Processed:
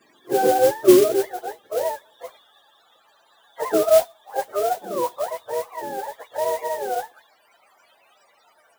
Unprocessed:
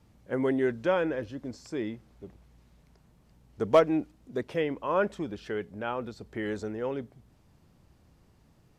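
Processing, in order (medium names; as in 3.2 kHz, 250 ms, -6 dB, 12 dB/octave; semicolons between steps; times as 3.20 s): spectrum inverted on a logarithmic axis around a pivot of 450 Hz; high-pass sweep 320 Hz -> 670 Hz, 0.82–2.51 s; modulation noise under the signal 15 dB; trim +7.5 dB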